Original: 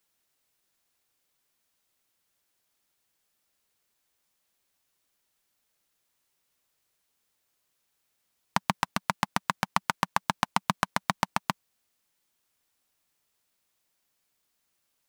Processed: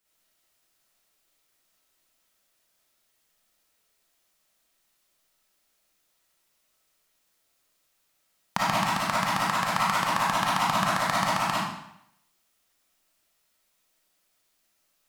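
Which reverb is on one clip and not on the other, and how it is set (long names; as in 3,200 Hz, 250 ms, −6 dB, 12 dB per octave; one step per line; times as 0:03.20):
comb and all-pass reverb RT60 0.77 s, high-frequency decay 0.95×, pre-delay 15 ms, DRR −8 dB
level −3 dB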